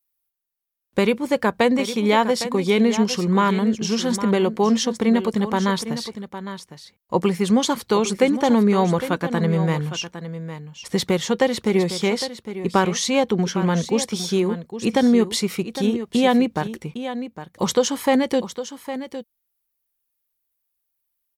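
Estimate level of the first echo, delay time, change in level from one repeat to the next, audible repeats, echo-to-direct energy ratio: -11.5 dB, 0.808 s, no steady repeat, 1, -11.5 dB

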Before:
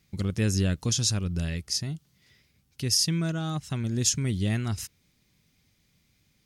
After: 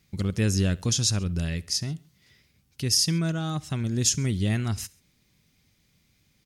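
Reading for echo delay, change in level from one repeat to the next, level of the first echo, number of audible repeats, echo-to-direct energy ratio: 67 ms, -4.5 dB, -23.0 dB, 2, -21.5 dB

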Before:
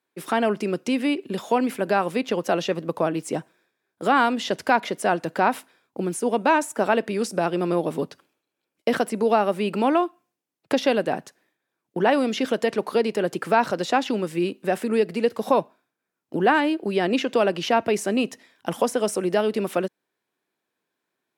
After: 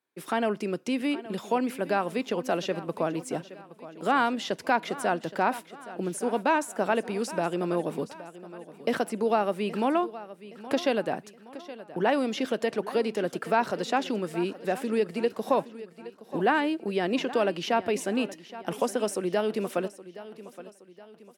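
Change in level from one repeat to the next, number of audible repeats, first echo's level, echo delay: -7.0 dB, 3, -16.0 dB, 0.82 s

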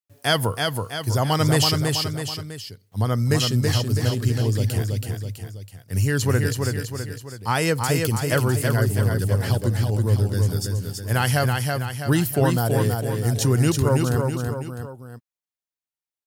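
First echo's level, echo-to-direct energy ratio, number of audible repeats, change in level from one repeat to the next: -4.0 dB, -3.0 dB, 3, -6.0 dB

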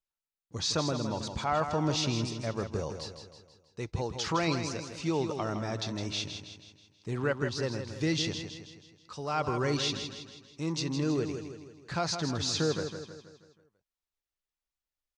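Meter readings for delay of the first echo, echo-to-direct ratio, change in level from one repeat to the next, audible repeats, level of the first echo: 0.161 s, -7.0 dB, -6.0 dB, 5, -8.0 dB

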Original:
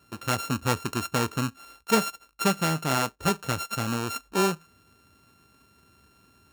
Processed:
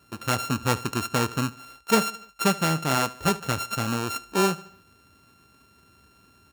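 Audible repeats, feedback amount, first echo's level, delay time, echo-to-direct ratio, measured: 3, 49%, -20.0 dB, 74 ms, -19.0 dB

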